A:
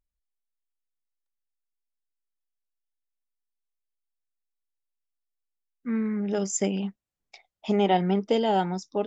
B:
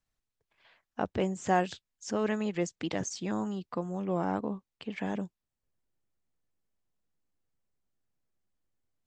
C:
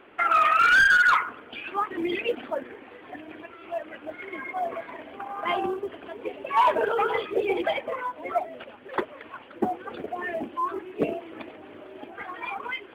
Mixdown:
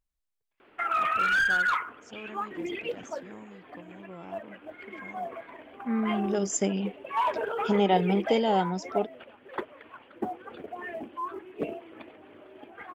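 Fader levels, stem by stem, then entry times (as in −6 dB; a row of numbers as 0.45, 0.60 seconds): −1.0, −14.0, −6.5 decibels; 0.00, 0.00, 0.60 seconds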